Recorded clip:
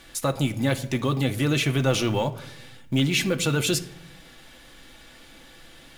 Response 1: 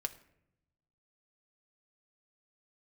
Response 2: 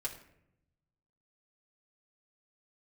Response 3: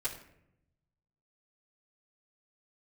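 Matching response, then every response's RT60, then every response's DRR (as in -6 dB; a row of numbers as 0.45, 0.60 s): 1; 0.75, 0.75, 0.75 s; 5.5, -4.0, -11.5 dB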